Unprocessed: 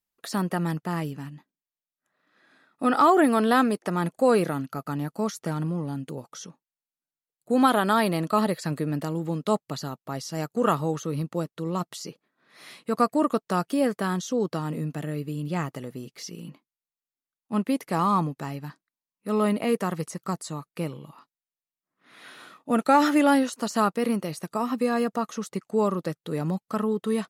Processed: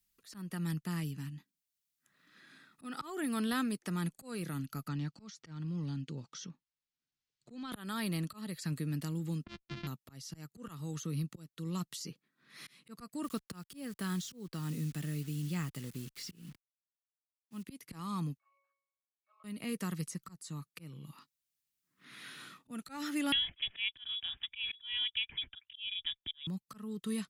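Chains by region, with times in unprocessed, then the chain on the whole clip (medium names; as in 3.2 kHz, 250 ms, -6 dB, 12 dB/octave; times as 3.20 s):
4.88–7.72 s: low-pass 5.9 kHz 24 dB/octave + compression, threshold -22 dBFS
9.44–9.87 s: sorted samples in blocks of 128 samples + low-pass 4.5 kHz 24 dB/octave + level-controlled noise filter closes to 1.1 kHz, open at -24 dBFS
13.24–17.63 s: band-stop 6.1 kHz, Q 6 + word length cut 8-bit, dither none
18.37–19.44 s: steep high-pass 690 Hz 48 dB/octave + treble shelf 3.3 kHz -12 dB + pitch-class resonator C#, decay 0.66 s
23.32–26.47 s: slow attack 146 ms + frequency inversion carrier 3.6 kHz
whole clip: slow attack 390 ms; amplifier tone stack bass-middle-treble 6-0-2; three bands compressed up and down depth 40%; trim +11 dB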